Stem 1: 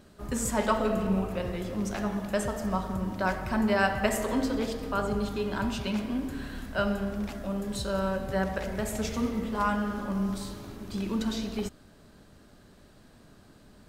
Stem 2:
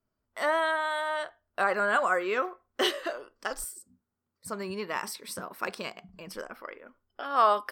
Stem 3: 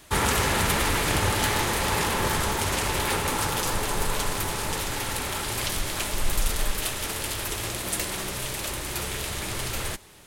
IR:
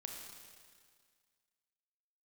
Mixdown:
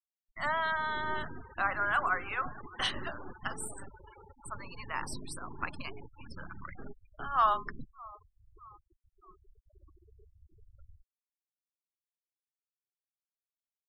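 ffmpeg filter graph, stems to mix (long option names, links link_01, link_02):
-filter_complex "[0:a]asoftclip=type=tanh:threshold=-25.5dB,lowshelf=frequency=210:width_type=q:width=3:gain=12,aeval=exprs='abs(val(0))':channel_layout=same,volume=-17.5dB[link_01];[1:a]adynamicequalizer=threshold=0.00282:dfrequency=8900:dqfactor=0.96:tfrequency=8900:tqfactor=0.96:attack=5:release=100:ratio=0.375:range=1.5:mode=boostabove:tftype=bell,highpass=frequency=800:width=0.5412,highpass=frequency=800:width=1.3066,highshelf=frequency=3000:gain=-4,volume=-2dB,asplit=3[link_02][link_03][link_04];[link_03]volume=-22dB[link_05];[2:a]alimiter=limit=-21dB:level=0:latency=1:release=353,equalizer=frequency=130:width_type=o:width=0.36:gain=-9.5,adelay=1050,volume=-17dB[link_06];[link_04]apad=whole_len=612293[link_07];[link_01][link_07]sidechaingate=range=-27dB:threshold=-58dB:ratio=16:detection=peak[link_08];[link_05]aecho=0:1:616|1232|1848|2464|3080|3696|4312|4928:1|0.55|0.303|0.166|0.0915|0.0503|0.0277|0.0152[link_09];[link_08][link_02][link_06][link_09]amix=inputs=4:normalize=0,afftfilt=real='re*gte(hypot(re,im),0.0112)':imag='im*gte(hypot(re,im),0.0112)':win_size=1024:overlap=0.75"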